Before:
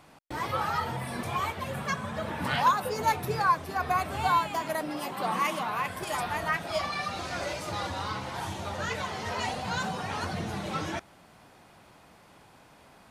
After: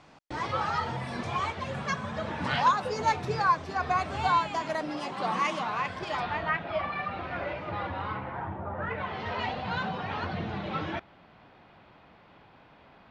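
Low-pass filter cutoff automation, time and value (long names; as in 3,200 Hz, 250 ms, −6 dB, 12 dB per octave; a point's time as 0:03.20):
low-pass filter 24 dB per octave
0:05.74 6,700 Hz
0:06.79 2,700 Hz
0:08.08 2,700 Hz
0:08.68 1,400 Hz
0:09.21 3,700 Hz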